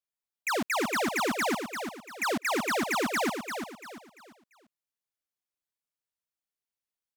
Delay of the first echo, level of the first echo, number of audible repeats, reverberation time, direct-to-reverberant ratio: 0.343 s, -7.0 dB, 3, none, none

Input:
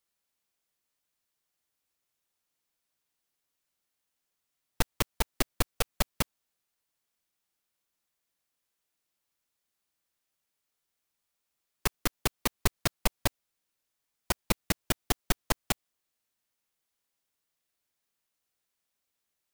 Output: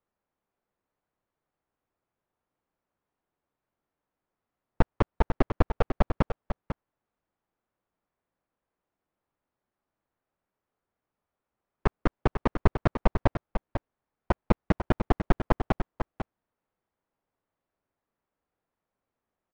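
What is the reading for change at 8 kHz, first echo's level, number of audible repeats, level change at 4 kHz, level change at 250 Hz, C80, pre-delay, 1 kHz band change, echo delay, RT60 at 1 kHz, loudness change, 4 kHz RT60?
under -25 dB, -8.0 dB, 1, -12.5 dB, +8.0 dB, none, none, +6.0 dB, 0.497 s, none, +2.5 dB, none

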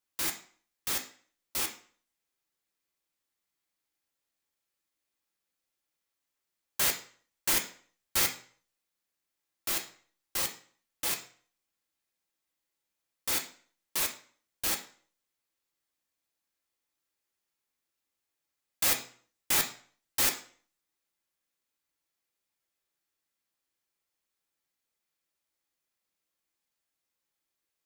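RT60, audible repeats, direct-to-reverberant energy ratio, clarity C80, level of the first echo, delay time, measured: 0.50 s, none, 2.0 dB, 15.5 dB, none, none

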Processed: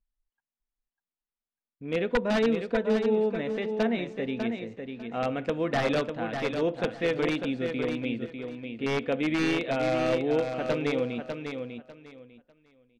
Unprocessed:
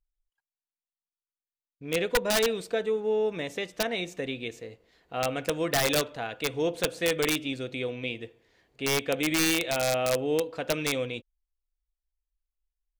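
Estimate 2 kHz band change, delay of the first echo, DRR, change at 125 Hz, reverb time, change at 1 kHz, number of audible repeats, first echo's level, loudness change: -2.0 dB, 0.598 s, none, +2.0 dB, none, +0.5 dB, 3, -6.5 dB, -0.5 dB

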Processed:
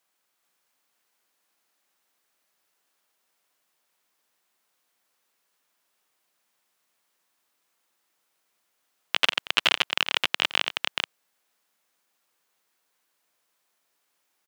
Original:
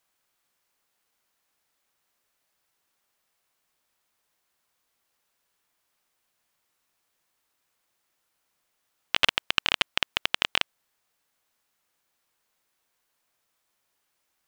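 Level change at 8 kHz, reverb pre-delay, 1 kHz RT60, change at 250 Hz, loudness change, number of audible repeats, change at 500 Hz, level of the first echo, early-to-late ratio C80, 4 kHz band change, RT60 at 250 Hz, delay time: +2.0 dB, none, none, +1.0 dB, +1.0 dB, 2, +2.0 dB, -16.0 dB, none, +2.0 dB, none, 89 ms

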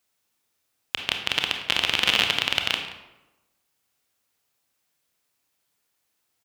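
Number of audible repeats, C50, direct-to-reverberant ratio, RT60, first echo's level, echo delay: 1, 6.0 dB, 4.0 dB, 1.0 s, -17.0 dB, 0.176 s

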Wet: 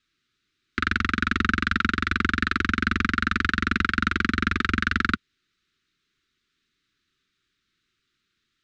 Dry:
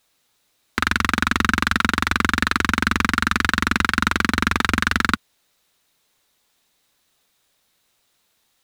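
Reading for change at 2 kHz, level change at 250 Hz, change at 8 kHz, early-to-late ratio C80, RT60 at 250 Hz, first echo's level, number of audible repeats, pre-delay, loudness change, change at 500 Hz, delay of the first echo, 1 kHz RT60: -4.0 dB, -3.0 dB, -14.5 dB, none, none, none, none, none, -4.0 dB, -6.0 dB, none, none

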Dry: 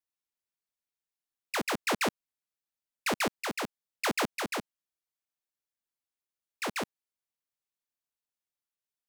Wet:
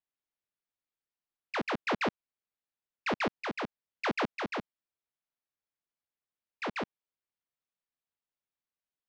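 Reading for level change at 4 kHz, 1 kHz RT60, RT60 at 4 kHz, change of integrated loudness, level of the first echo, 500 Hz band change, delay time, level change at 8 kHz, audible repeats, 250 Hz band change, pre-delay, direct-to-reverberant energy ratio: -5.5 dB, none, none, -2.0 dB, none, -0.5 dB, none, -17.5 dB, none, -0.5 dB, none, none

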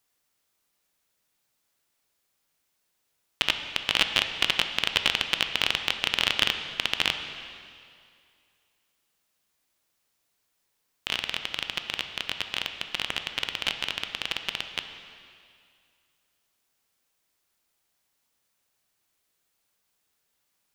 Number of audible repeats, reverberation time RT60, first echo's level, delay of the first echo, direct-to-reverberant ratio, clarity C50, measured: none, 2.3 s, none, none, 6.5 dB, 7.5 dB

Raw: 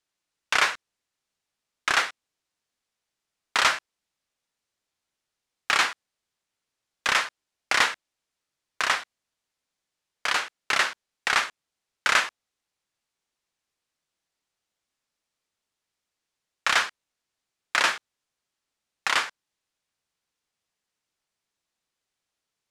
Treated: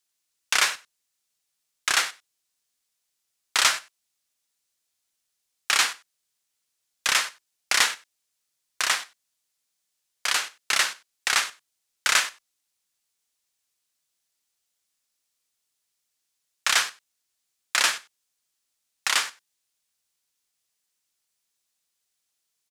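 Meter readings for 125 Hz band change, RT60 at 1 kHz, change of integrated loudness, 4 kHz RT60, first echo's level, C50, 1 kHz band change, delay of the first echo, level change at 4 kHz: n/a, none, +1.0 dB, none, -21.0 dB, none, -3.0 dB, 95 ms, +3.0 dB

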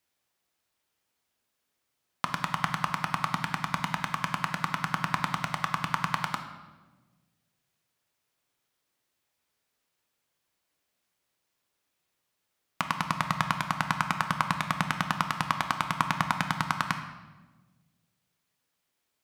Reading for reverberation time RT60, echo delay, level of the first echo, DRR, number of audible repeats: 1.3 s, none, none, 5.5 dB, none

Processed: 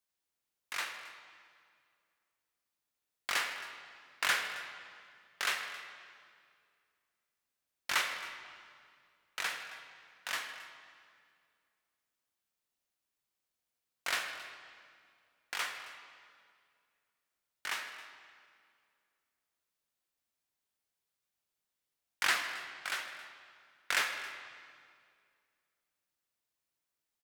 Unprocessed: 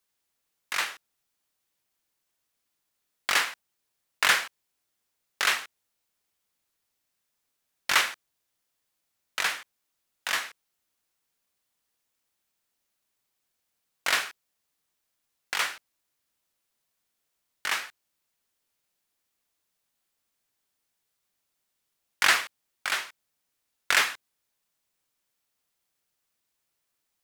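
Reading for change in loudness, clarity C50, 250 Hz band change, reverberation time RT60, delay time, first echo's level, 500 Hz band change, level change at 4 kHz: -9.5 dB, 6.5 dB, -7.5 dB, 2.2 s, 0.157 s, -17.5 dB, -7.5 dB, -8.0 dB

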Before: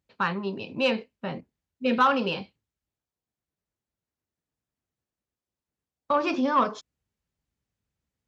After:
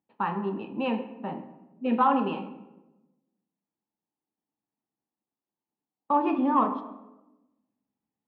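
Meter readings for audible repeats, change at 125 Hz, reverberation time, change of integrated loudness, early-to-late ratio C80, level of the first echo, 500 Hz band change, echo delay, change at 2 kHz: none, -1.5 dB, 1.1 s, -1.0 dB, 13.0 dB, none, -3.5 dB, none, -9.5 dB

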